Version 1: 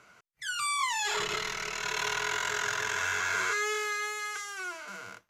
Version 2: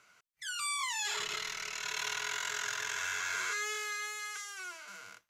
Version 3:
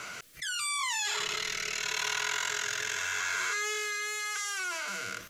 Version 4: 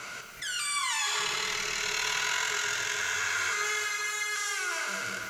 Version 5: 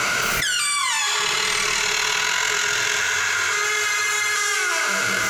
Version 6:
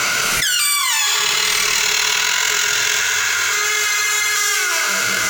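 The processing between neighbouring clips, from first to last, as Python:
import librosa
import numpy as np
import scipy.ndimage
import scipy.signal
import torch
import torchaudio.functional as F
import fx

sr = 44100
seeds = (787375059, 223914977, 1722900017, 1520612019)

y1 = fx.tilt_shelf(x, sr, db=-5.5, hz=1300.0)
y1 = y1 * librosa.db_to_amplitude(-7.0)
y2 = fx.rotary(y1, sr, hz=0.8)
y2 = fx.env_flatten(y2, sr, amount_pct=70)
y2 = y2 * librosa.db_to_amplitude(3.0)
y3 = fx.rev_plate(y2, sr, seeds[0], rt60_s=4.0, hf_ratio=0.6, predelay_ms=0, drr_db=1.0)
y4 = y3 + 10.0 ** (-9.0 / 20.0) * np.pad(y3, (int(847 * sr / 1000.0), 0))[:len(y3)]
y4 = fx.env_flatten(y4, sr, amount_pct=100)
y4 = y4 * librosa.db_to_amplitude(6.5)
y5 = fx.high_shelf(y4, sr, hz=2800.0, db=9.5)
y5 = np.interp(np.arange(len(y5)), np.arange(len(y5))[::2], y5[::2])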